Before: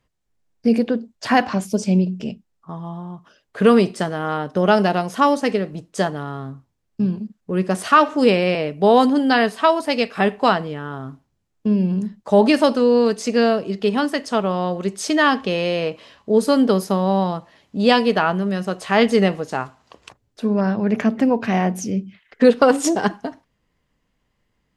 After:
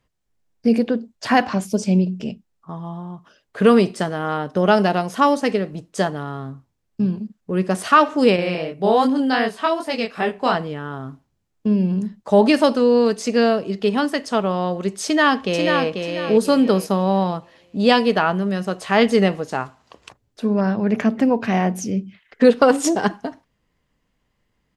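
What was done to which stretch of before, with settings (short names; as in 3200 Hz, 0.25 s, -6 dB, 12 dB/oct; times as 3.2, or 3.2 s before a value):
8.36–10.55 chorus 2.6 Hz
15.04–15.88 echo throw 0.49 s, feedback 30%, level -5 dB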